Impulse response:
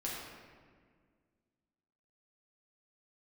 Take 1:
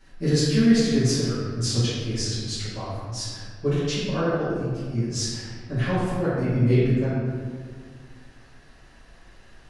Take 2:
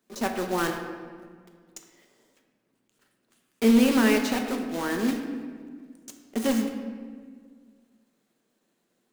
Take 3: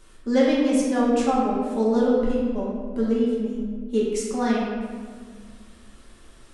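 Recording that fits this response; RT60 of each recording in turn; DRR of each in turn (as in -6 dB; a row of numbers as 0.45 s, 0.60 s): 3; 1.8 s, 1.8 s, 1.8 s; -13.0 dB, 3.5 dB, -6.0 dB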